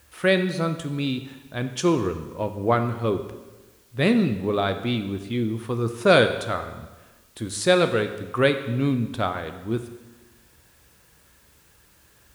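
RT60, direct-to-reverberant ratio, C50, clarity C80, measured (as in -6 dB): 1.2 s, 7.5 dB, 10.0 dB, 11.5 dB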